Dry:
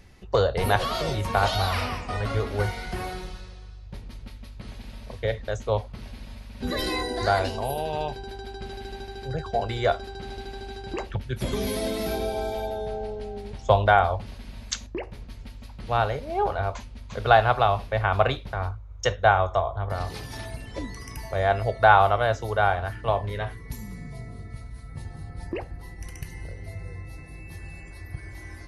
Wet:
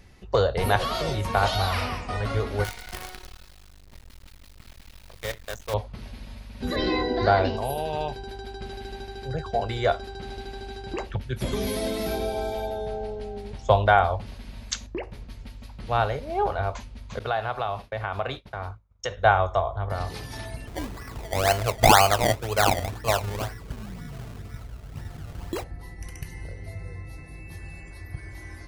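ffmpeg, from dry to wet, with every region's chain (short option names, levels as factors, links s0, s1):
-filter_complex "[0:a]asettb=1/sr,asplit=3[s0][s1][s2];[s0]atrim=end=2.644[s3];[s1]atrim=start=2.64:end=5.74,asetpts=PTS-STARTPTS,afade=t=in:d=0.004:c=qsin,afade=t=out:st=3.096:d=0.004:c=qsin,equalizer=f=210:w=0.32:g=-11,acrusher=bits=6:dc=4:mix=0:aa=0.000001[s4];[s2]atrim=start=5.736[s5];[s3][s4]acrossfade=d=0.004:c1=hsin:c2=qsin[s6];[s6][s5]acrossfade=d=0.004:c1=qsin:c2=hsin,asettb=1/sr,asplit=3[s7][s8][s9];[s7]atrim=end=6.764[s10];[s8]atrim=start=6.76:end=7.57,asetpts=PTS-STARTPTS,afade=t=in:d=0.004:c=qsin,afade=t=out:st=0.806:d=0.004:c=qsin,lowpass=f=4600:w=0.5412,lowpass=f=4600:w=1.3066,equalizer=f=250:w=0.45:g=6[s11];[s9]atrim=start=7.566[s12];[s10][s11]acrossfade=d=0.004:c1=hsin:c2=qsin[s13];[s13][s12]acrossfade=d=0.004:c1=qsin:c2=hsin,asettb=1/sr,asplit=3[s14][s15][s16];[s14]atrim=end=17.194[s17];[s15]atrim=start=17.19:end=19.17,asetpts=PTS-STARTPTS,afade=t=in:d=0.004:c=qsin,afade=t=out:st=1.976:d=0.004:c=qsin,agate=range=0.0224:threshold=0.0282:ratio=3:release=100:detection=peak,lowshelf=f=80:g=-10,acompressor=threshold=0.0355:ratio=2:attack=3.2:release=140:knee=1:detection=peak[s18];[s16]atrim=start=19.166[s19];[s17][s18]acrossfade=d=0.004:c1=hsin:c2=qsin[s20];[s20][s19]acrossfade=d=0.004:c1=qsin:c2=hsin,asettb=1/sr,asplit=3[s21][s22][s23];[s21]atrim=end=20.674[s24];[s22]atrim=start=20.67:end=25.64,asetpts=PTS-STARTPTS,afade=t=in:d=0.004:c=qsin,afade=t=out:st=4.966:d=0.004:c=qsin,lowpass=f=3300:t=q:w=1.6,acrusher=samples=23:mix=1:aa=0.000001:lfo=1:lforange=23:lforate=2[s25];[s23]atrim=start=25.636[s26];[s24][s25]acrossfade=d=0.004:c1=hsin:c2=qsin[s27];[s27][s26]acrossfade=d=0.004:c1=qsin:c2=hsin"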